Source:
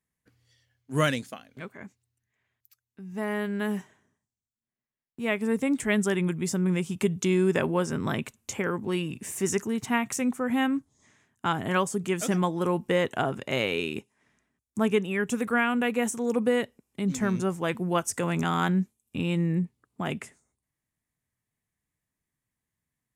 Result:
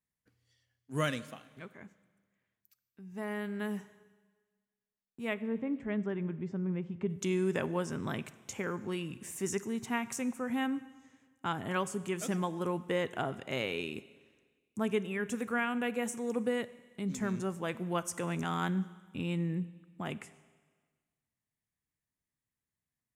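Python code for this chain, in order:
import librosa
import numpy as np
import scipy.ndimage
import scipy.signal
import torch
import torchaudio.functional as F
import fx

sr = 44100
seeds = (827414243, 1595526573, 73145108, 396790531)

y = fx.spacing_loss(x, sr, db_at_10k=44, at=(5.33, 7.08), fade=0.02)
y = fx.rev_schroeder(y, sr, rt60_s=1.5, comb_ms=31, drr_db=16.0)
y = F.gain(torch.from_numpy(y), -7.5).numpy()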